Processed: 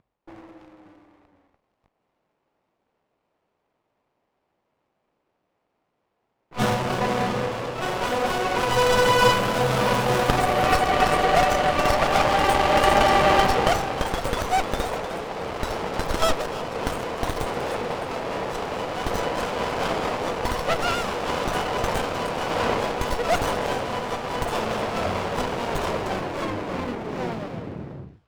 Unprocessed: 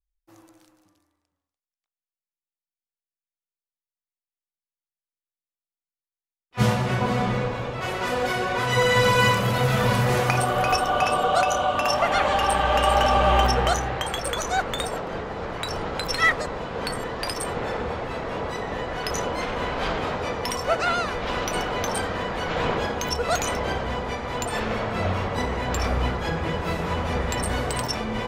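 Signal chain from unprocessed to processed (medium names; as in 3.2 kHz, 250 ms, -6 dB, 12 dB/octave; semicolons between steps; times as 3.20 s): tape stop on the ending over 2.77 s; upward compressor, threshold -34 dBFS; level-controlled noise filter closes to 820 Hz, open at -27 dBFS; high-pass 95 Hz 24 dB/octave; bass shelf 390 Hz -11 dB; hum notches 60/120 Hz; feedback echo behind a high-pass 306 ms, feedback 34%, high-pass 1.8 kHz, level -15 dB; sliding maximum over 17 samples; trim +6 dB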